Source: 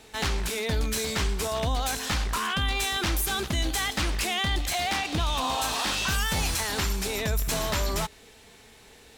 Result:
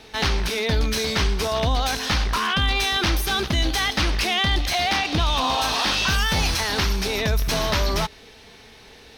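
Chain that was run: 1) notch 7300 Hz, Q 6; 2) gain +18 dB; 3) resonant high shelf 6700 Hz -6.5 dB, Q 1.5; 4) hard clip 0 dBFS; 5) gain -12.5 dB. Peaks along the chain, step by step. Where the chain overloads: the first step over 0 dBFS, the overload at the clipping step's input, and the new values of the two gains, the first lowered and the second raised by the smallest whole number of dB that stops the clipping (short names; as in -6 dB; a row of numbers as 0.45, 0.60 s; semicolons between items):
-16.0, +2.0, +3.0, 0.0, -12.5 dBFS; step 2, 3.0 dB; step 2 +15 dB, step 5 -9.5 dB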